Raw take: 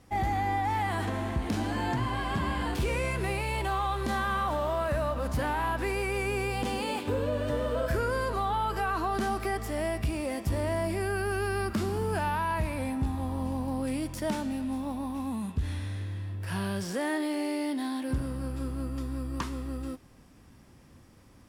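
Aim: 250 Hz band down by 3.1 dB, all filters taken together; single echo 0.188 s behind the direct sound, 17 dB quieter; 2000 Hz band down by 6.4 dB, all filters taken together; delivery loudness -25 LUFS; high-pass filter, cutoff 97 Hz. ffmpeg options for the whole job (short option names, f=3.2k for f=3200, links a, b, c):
-af "highpass=97,equalizer=f=250:t=o:g=-3.5,equalizer=f=2k:t=o:g=-8.5,aecho=1:1:188:0.141,volume=8.5dB"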